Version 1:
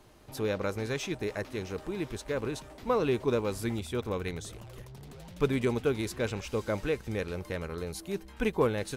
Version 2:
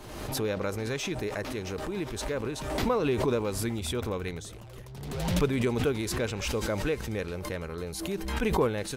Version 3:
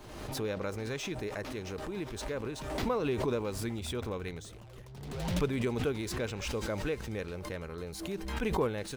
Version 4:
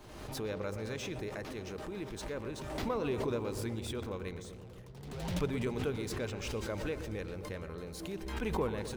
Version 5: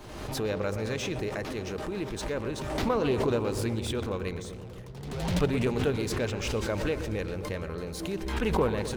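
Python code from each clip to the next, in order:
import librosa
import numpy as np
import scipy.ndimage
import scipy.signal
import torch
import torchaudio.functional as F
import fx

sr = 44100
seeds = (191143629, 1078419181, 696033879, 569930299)

y1 = fx.pre_swell(x, sr, db_per_s=42.0)
y2 = scipy.signal.medfilt(y1, 3)
y2 = y2 * 10.0 ** (-4.5 / 20.0)
y3 = fx.echo_filtered(y2, sr, ms=122, feedback_pct=74, hz=1300.0, wet_db=-9.0)
y3 = y3 * 10.0 ** (-3.5 / 20.0)
y4 = fx.doppler_dist(y3, sr, depth_ms=0.2)
y4 = y4 * 10.0 ** (7.5 / 20.0)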